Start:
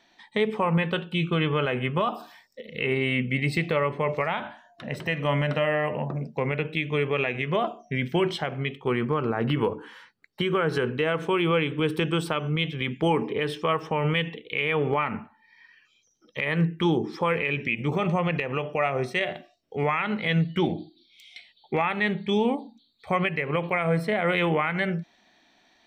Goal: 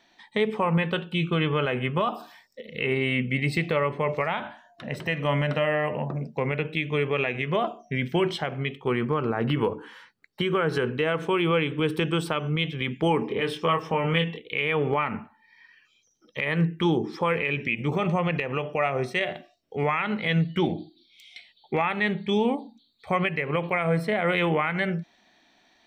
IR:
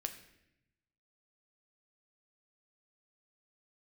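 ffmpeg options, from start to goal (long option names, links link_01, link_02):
-filter_complex "[0:a]asettb=1/sr,asplit=3[link_01][link_02][link_03];[link_01]atrim=end=13.274[link_04];[link_02]atrim=start=13.27:end=14.4,asetpts=PTS-STARTPTS,afade=type=in:duration=0.004:curve=qsin,afade=type=out:start_time=1.126:duration=0.004:curve=qsin,asplit=2[link_05][link_06];[link_06]adelay=24,volume=-5dB[link_07];[link_05][link_07]amix=inputs=2:normalize=0,atrim=end_sample=49833[link_08];[link_03]atrim=start=14.396[link_09];[link_04][link_08]acrossfade=duration=0.004:curve1=hsin:curve2=qsin[link_10];[link_10][link_09]acrossfade=duration=0.004:curve1=qsin:curve2=hsin"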